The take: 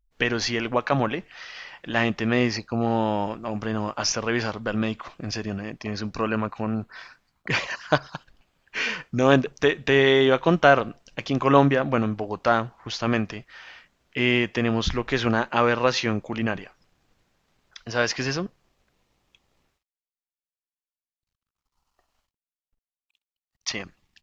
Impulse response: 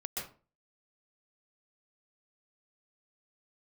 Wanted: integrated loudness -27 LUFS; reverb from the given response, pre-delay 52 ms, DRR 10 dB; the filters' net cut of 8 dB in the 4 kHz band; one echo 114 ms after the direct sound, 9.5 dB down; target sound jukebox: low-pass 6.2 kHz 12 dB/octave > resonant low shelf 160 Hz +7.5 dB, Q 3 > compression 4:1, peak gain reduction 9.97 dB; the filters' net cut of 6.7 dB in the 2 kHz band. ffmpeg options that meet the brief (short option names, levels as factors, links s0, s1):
-filter_complex "[0:a]equalizer=f=2000:t=o:g=-7,equalizer=f=4000:t=o:g=-7.5,aecho=1:1:114:0.335,asplit=2[s0][s1];[1:a]atrim=start_sample=2205,adelay=52[s2];[s1][s2]afir=irnorm=-1:irlink=0,volume=0.266[s3];[s0][s3]amix=inputs=2:normalize=0,lowpass=6200,lowshelf=f=160:t=q:w=3:g=7.5,acompressor=threshold=0.1:ratio=4,volume=0.841"